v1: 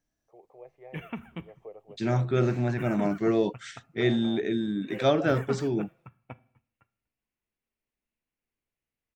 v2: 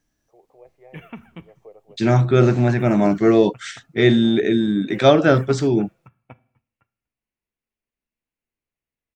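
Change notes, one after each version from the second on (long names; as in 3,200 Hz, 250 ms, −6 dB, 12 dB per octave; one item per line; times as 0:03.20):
second voice +10.0 dB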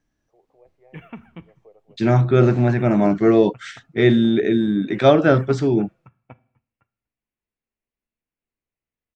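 first voice −6.0 dB
master: add low-pass filter 2,900 Hz 6 dB per octave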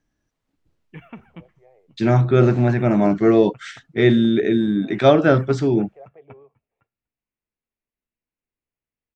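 first voice: entry +0.80 s
background: send −8.5 dB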